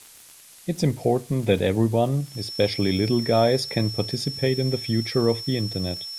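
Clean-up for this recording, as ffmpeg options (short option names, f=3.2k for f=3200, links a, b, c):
-af "adeclick=t=4,bandreject=f=5.4k:w=30,afftdn=nr=20:nf=-48"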